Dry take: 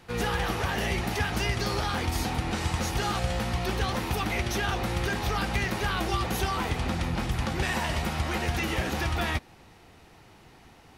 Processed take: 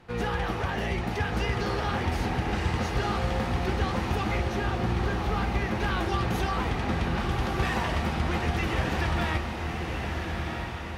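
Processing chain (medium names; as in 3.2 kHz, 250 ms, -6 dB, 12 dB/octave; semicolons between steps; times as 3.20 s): low-pass 2.2 kHz 6 dB/octave, from 4.37 s 1.2 kHz, from 5.80 s 3 kHz; echo that smears into a reverb 1297 ms, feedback 53%, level -4 dB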